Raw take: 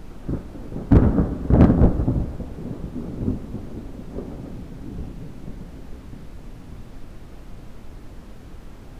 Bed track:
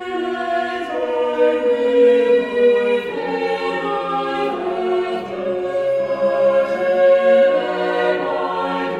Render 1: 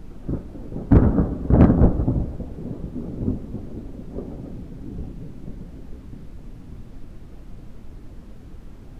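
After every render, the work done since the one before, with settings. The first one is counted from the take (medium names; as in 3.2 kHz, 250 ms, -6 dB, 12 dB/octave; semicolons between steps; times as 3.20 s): noise reduction 6 dB, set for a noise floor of -41 dBFS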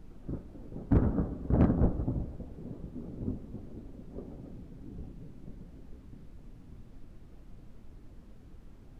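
trim -11 dB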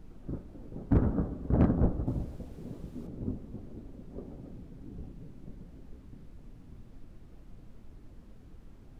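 2.07–3.07 s: treble shelf 2.2 kHz +9.5 dB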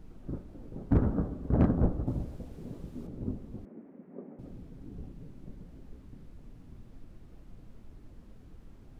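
3.65–4.39 s: elliptic band-pass 190–2100 Hz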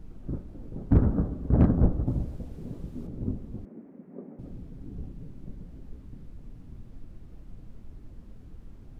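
bass shelf 250 Hz +6 dB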